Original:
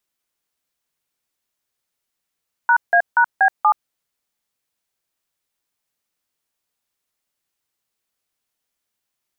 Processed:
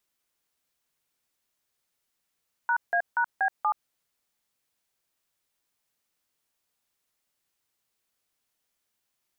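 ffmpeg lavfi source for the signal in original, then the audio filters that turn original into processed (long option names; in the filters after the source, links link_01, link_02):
-f lavfi -i "aevalsrc='0.224*clip(min(mod(t,0.239),0.076-mod(t,0.239))/0.002,0,1)*(eq(floor(t/0.239),0)*(sin(2*PI*941*mod(t,0.239))+sin(2*PI*1477*mod(t,0.239)))+eq(floor(t/0.239),1)*(sin(2*PI*697*mod(t,0.239))+sin(2*PI*1633*mod(t,0.239)))+eq(floor(t/0.239),2)*(sin(2*PI*941*mod(t,0.239))+sin(2*PI*1477*mod(t,0.239)))+eq(floor(t/0.239),3)*(sin(2*PI*770*mod(t,0.239))+sin(2*PI*1633*mod(t,0.239)))+eq(floor(t/0.239),4)*(sin(2*PI*852*mod(t,0.239))+sin(2*PI*1209*mod(t,0.239))))':duration=1.195:sample_rate=44100"
-af "alimiter=limit=-18dB:level=0:latency=1:release=50"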